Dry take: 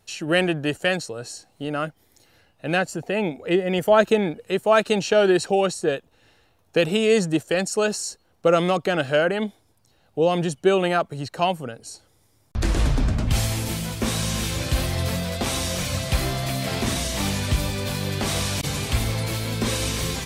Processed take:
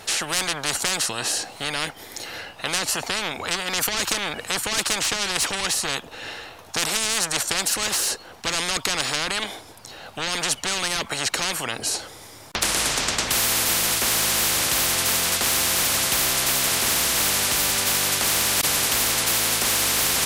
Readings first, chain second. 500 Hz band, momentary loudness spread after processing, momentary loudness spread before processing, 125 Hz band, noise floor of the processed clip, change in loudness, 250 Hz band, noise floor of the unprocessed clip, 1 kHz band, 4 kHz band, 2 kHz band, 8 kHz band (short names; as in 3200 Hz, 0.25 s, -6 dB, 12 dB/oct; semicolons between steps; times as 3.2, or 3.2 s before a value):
-11.0 dB, 11 LU, 10 LU, -12.0 dB, -43 dBFS, +2.0 dB, -9.5 dB, -62 dBFS, -1.0 dB, +7.5 dB, +3.0 dB, +11.5 dB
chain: overdrive pedal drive 16 dB, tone 5200 Hz, clips at -4 dBFS; spectral compressor 10:1